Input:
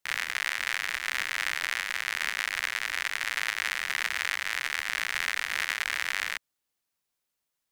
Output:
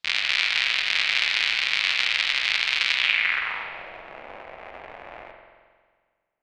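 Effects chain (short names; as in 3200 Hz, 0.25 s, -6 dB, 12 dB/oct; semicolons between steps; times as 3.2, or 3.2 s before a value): low-pass sweep 3500 Hz -> 540 Hz, 3.53–4.48; spring tank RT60 2 s, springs 54 ms, chirp 75 ms, DRR 3 dB; varispeed +20%; gain +3 dB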